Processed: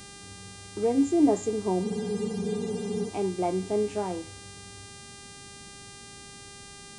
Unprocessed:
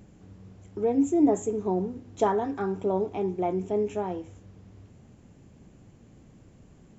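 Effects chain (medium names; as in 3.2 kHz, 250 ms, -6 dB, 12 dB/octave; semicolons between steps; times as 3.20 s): mains buzz 400 Hz, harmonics 25, -47 dBFS -1 dB/octave; spectral freeze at 1.85 s, 1.23 s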